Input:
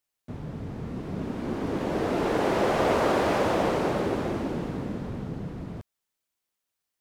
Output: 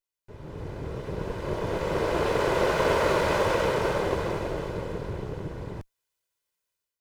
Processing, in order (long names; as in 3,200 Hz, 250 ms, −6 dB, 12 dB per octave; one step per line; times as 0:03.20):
lower of the sound and its delayed copy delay 2 ms
automatic gain control gain up to 9.5 dB
level −7 dB